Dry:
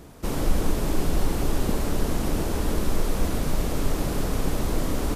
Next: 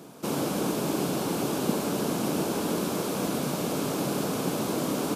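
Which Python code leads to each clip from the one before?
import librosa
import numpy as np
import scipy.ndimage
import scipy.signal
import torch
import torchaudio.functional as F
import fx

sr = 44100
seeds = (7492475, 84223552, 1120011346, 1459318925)

y = scipy.signal.sosfilt(scipy.signal.butter(4, 150.0, 'highpass', fs=sr, output='sos'), x)
y = fx.peak_eq(y, sr, hz=1900.0, db=-9.5, octaves=0.23)
y = y * 10.0 ** (1.5 / 20.0)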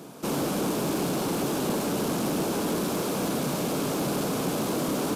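y = 10.0 ** (-24.0 / 20.0) * np.tanh(x / 10.0 ** (-24.0 / 20.0))
y = y * 10.0 ** (3.0 / 20.0)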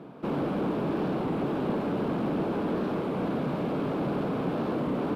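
y = fx.air_absorb(x, sr, metres=480.0)
y = fx.record_warp(y, sr, rpm=33.33, depth_cents=100.0)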